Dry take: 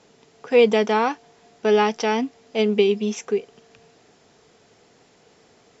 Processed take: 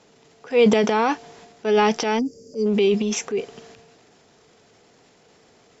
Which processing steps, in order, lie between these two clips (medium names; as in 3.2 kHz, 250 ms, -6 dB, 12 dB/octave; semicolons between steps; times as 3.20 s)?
time-frequency box 2.19–2.67 s, 590–4500 Hz -28 dB; transient shaper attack -5 dB, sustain +9 dB